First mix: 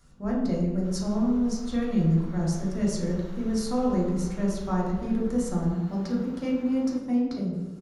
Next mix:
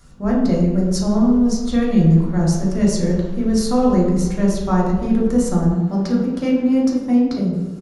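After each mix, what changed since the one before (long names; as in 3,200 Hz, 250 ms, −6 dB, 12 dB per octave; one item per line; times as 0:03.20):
speech +9.5 dB
first sound +10.5 dB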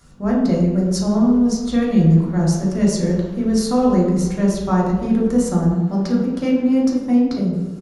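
first sound: add high-pass filter 70 Hz 6 dB per octave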